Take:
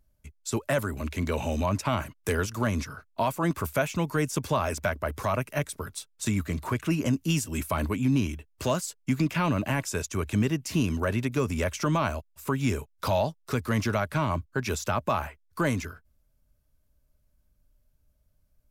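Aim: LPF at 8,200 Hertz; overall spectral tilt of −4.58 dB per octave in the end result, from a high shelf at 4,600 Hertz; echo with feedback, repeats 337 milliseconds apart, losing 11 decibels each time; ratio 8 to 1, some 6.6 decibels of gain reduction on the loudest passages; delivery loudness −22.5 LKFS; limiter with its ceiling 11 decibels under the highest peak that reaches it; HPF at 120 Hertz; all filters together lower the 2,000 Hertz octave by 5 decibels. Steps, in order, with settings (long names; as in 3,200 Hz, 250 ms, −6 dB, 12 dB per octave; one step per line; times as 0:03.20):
high-pass filter 120 Hz
low-pass filter 8,200 Hz
parametric band 2,000 Hz −8.5 dB
high-shelf EQ 4,600 Hz +7 dB
downward compressor 8 to 1, threshold −28 dBFS
brickwall limiter −27.5 dBFS
repeating echo 337 ms, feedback 28%, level −11 dB
level +15 dB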